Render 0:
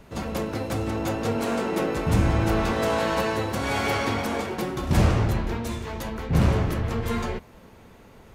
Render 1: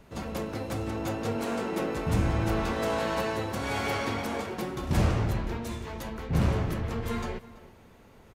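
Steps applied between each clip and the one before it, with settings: echo from a far wall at 57 m, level -18 dB; trim -5 dB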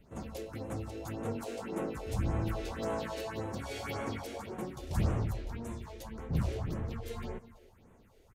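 phase shifter stages 4, 1.8 Hz, lowest notch 160–4700 Hz; trim -6 dB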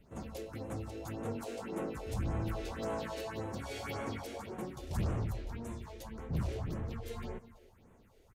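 saturation -24 dBFS, distortion -18 dB; trim -1.5 dB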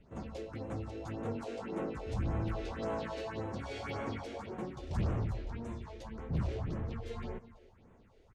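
distance through air 98 m; trim +1 dB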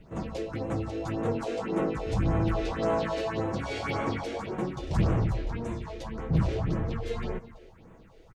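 comb 6.2 ms, depth 33%; trim +8.5 dB

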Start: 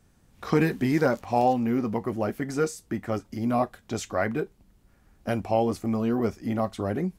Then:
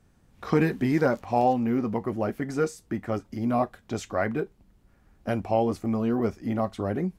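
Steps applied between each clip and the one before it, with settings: treble shelf 3.9 kHz -6 dB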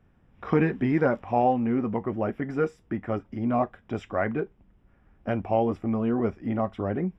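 Savitzky-Golay filter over 25 samples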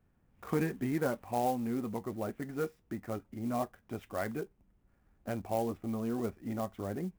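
sampling jitter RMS 0.031 ms; trim -9 dB

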